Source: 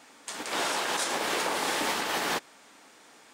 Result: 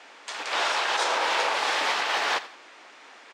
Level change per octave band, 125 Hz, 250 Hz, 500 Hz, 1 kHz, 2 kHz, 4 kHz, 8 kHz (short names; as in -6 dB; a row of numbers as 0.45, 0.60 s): under -10 dB, -7.5 dB, +2.0 dB, +5.0 dB, +5.0 dB, +4.0 dB, -3.0 dB